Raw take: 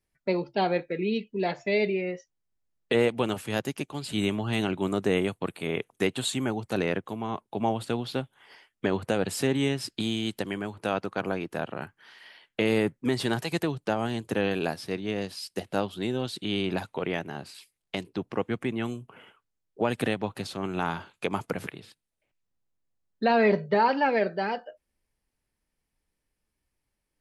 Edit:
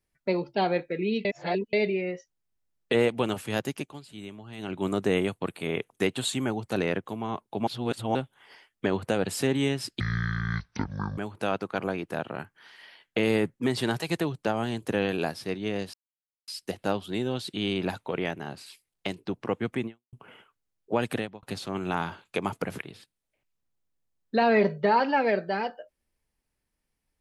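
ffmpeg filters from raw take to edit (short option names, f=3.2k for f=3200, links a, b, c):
-filter_complex "[0:a]asplit=12[a][b][c][d][e][f][g][h][i][j][k][l];[a]atrim=end=1.252[m];[b]atrim=start=1.248:end=1.732,asetpts=PTS-STARTPTS,areverse[n];[c]atrim=start=1.728:end=4.05,asetpts=PTS-STARTPTS,afade=t=out:st=2.022:d=0.3:silence=0.188365[o];[d]atrim=start=4.05:end=4.57,asetpts=PTS-STARTPTS,volume=-14.5dB[p];[e]atrim=start=4.57:end=7.672,asetpts=PTS-STARTPTS,afade=t=in:d=0.3:silence=0.188365[q];[f]atrim=start=7.668:end=8.152,asetpts=PTS-STARTPTS,areverse[r];[g]atrim=start=8.148:end=10.004[s];[h]atrim=start=10:end=10.6,asetpts=PTS-STARTPTS,asetrate=22491,aresample=44100,atrim=end_sample=51882,asetpts=PTS-STARTPTS[t];[i]atrim=start=10.596:end=15.36,asetpts=PTS-STARTPTS,afade=t=out:st=4.76:d=0.004:c=hsin,apad=pad_dur=0.54[u];[j]atrim=start=15.36:end=19.01,asetpts=PTS-STARTPTS,afade=t=in:d=0.004:c=hsin,afade=t=out:st=3.39:d=0.26:c=exp[v];[k]atrim=start=19.01:end=20.31,asetpts=PTS-STARTPTS,afade=t=in:d=0.004:c=hsin,afade=t=out:st=0.95:d=0.35[w];[l]atrim=start=20.31,asetpts=PTS-STARTPTS,afade=t=in:d=0.004:c=hsin[x];[m][n]acrossfade=d=0.004:c1=hsin:c2=hsin[y];[o][p][q]concat=n=3:v=0:a=1[z];[y][z]acrossfade=d=0.004:c1=hsin:c2=hsin[aa];[aa][r]acrossfade=d=0.004:c1=hsin:c2=hsin[ab];[ab][s]acrossfade=d=0.004:c1=hsin:c2=hsin[ac];[ac][t]acrossfade=d=0.004:c1=hsin:c2=hsin[ad];[u][v][w][x]concat=n=4:v=0:a=1[ae];[ad][ae]acrossfade=d=0.004:c1=hsin:c2=hsin"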